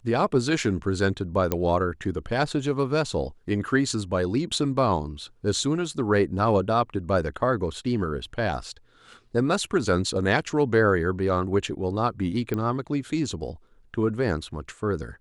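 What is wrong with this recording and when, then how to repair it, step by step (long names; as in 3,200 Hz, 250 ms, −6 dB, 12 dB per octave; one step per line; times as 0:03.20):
0:01.52: click −9 dBFS
0:12.54: click −16 dBFS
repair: click removal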